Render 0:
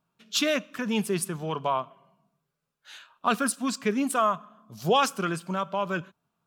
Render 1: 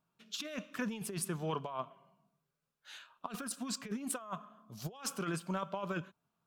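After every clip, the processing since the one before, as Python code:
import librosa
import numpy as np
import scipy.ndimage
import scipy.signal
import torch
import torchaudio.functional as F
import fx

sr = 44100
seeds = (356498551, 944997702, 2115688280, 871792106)

y = fx.over_compress(x, sr, threshold_db=-29.0, ratio=-0.5)
y = F.gain(torch.from_numpy(y), -8.5).numpy()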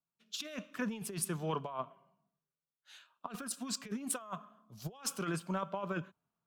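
y = fx.band_widen(x, sr, depth_pct=40)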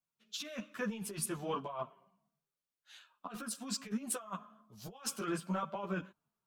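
y = fx.ensemble(x, sr)
y = F.gain(torch.from_numpy(y), 2.5).numpy()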